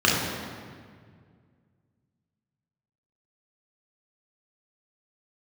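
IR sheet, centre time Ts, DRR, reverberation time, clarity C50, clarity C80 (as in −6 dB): 94 ms, −5.0 dB, 1.9 s, 0.5 dB, 2.5 dB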